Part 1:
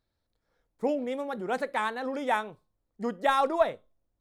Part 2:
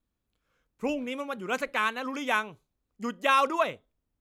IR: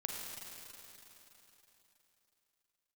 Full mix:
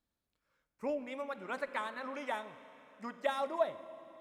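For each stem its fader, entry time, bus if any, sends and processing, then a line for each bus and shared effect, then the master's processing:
-10.5 dB, 0.00 s, send -13.5 dB, steep high-pass 530 Hz 96 dB/octave
-5.0 dB, 0.00 s, send -13.5 dB, low-pass that closes with the level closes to 780 Hz, closed at -22 dBFS; bass shelf 67 Hz -8 dB; auto duck -9 dB, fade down 1.20 s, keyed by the first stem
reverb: on, RT60 3.6 s, pre-delay 36 ms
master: none

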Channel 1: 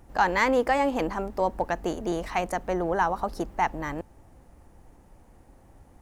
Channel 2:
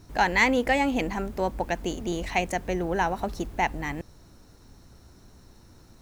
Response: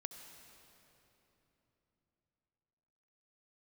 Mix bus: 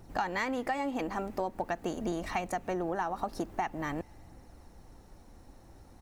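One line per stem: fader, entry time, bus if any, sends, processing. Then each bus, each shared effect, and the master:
-1.5 dB, 0.00 s, no send, none
-11.5 dB, 1.4 ms, polarity flipped, send -12.5 dB, phaser 0.46 Hz, delay 3.8 ms, feedback 50%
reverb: on, RT60 3.6 s, pre-delay 61 ms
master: compression 6:1, threshold -29 dBFS, peak gain reduction 11.5 dB

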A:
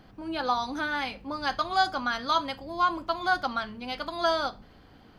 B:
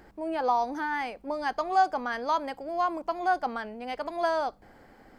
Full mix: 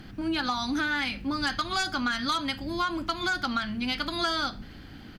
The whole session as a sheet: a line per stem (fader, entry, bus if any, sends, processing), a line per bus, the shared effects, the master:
0.0 dB, 0.00 s, no send, high-order bell 700 Hz -10 dB; sine folder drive 6 dB, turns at -14.5 dBFS
-8.5 dB, 2.8 ms, no send, none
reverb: none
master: compression, threshold -25 dBFS, peak gain reduction 8 dB

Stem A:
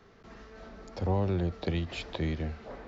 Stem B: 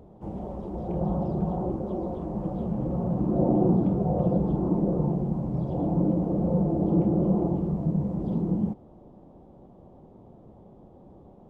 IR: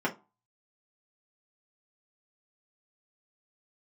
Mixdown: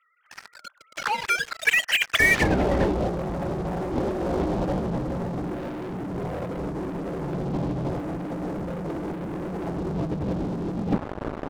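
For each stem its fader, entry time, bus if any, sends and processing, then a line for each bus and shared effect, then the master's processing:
-2.0 dB, 0.00 s, send -18 dB, formants replaced by sine waves; high-pass 1.4 kHz 24 dB/octave
-3.0 dB, 2.20 s, send -19.5 dB, peaking EQ 210 Hz -11.5 dB 0.21 oct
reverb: on, RT60 0.30 s, pre-delay 3 ms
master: low-pass 3.1 kHz 12 dB/octave; waveshaping leveller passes 5; compressor with a negative ratio -24 dBFS, ratio -0.5

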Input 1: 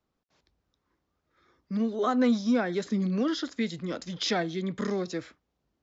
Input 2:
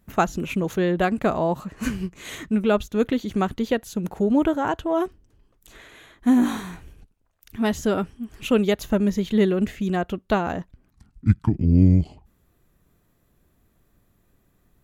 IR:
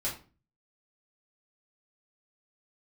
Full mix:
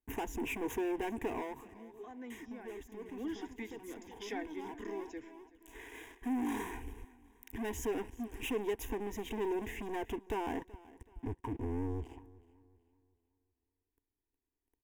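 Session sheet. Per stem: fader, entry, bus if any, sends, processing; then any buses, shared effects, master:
2.88 s -19 dB -> 3.26 s -10 dB, 0.00 s, no send, echo send -20.5 dB, none
-17.5 dB, 0.00 s, muted 1.74–2.30 s, no send, echo send -20.5 dB, compression 5:1, threshold -24 dBFS, peak gain reduction 13 dB; waveshaping leveller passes 5; small resonant body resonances 280/440/950/3800 Hz, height 6 dB, ringing for 30 ms; auto duck -12 dB, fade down 0.35 s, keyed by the first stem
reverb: none
echo: feedback delay 378 ms, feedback 37%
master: static phaser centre 870 Hz, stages 8

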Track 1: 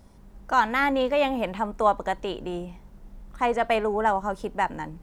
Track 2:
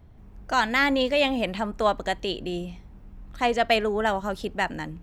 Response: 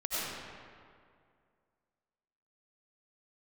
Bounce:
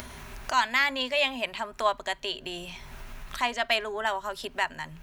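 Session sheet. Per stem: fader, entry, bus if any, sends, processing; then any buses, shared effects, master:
-13.5 dB, 0.00 s, no send, rippled EQ curve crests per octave 1.5, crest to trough 14 dB
0.0 dB, 0.00 s, no send, high-pass 1.3 kHz 12 dB/octave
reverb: none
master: upward compressor, threshold -29 dBFS; tape noise reduction on one side only encoder only

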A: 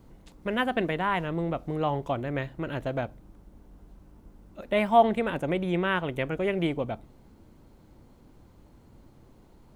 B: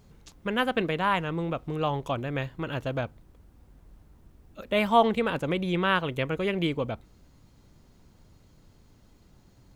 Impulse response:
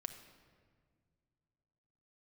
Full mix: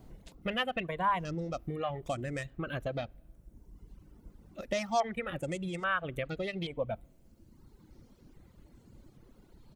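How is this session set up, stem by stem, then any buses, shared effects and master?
-1.5 dB, 0.00 s, send -6.5 dB, peaking EQ 880 Hz -6 dB 1.3 oct; compression 12:1, threshold -31 dBFS, peak gain reduction 14 dB
-6.0 dB, 1.7 ms, send -23.5 dB, dead-time distortion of 0.091 ms; step-sequenced low-pass 2.4 Hz 710–8000 Hz; auto duck -8 dB, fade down 1.10 s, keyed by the first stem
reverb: on, RT60 1.9 s, pre-delay 6 ms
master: reverb removal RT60 1.5 s

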